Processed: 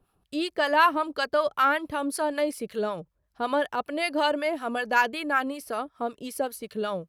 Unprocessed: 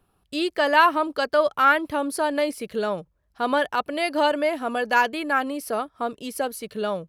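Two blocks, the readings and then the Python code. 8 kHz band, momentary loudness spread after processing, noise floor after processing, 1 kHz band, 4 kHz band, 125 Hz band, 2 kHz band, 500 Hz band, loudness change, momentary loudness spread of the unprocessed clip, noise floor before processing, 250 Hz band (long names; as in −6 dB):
−2.5 dB, 10 LU, −75 dBFS, −3.5 dB, −3.0 dB, −2.5 dB, −3.0 dB, −3.5 dB, −3.5 dB, 11 LU, −69 dBFS, −3.0 dB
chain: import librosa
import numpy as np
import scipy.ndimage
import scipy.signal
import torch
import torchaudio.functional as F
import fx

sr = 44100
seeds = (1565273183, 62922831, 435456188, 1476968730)

y = fx.harmonic_tremolo(x, sr, hz=5.3, depth_pct=70, crossover_hz=850.0)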